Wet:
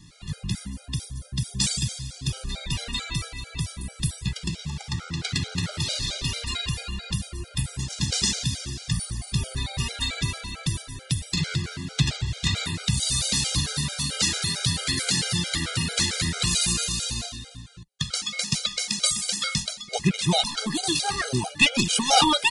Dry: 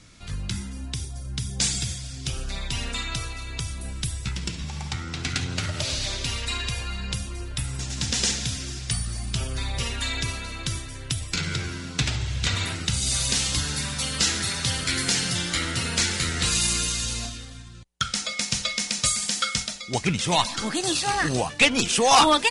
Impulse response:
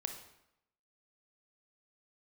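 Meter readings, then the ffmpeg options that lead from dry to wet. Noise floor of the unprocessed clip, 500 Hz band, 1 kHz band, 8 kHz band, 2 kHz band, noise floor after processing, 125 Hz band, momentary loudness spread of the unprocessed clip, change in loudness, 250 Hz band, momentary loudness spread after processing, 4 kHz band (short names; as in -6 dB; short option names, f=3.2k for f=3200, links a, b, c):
-38 dBFS, -5.0 dB, -3.5 dB, -1.0 dB, -2.0 dB, -46 dBFS, +1.5 dB, 11 LU, -0.5 dB, +1.0 dB, 10 LU, +0.5 dB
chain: -af "equalizer=f=160:t=o:w=0.67:g=8,equalizer=f=4k:t=o:w=0.67:g=5,equalizer=f=10k:t=o:w=0.67:g=4,afftfilt=real='re*gt(sin(2*PI*4.5*pts/sr)*(1-2*mod(floor(b*sr/1024/410),2)),0)':imag='im*gt(sin(2*PI*4.5*pts/sr)*(1-2*mod(floor(b*sr/1024/410),2)),0)':win_size=1024:overlap=0.75"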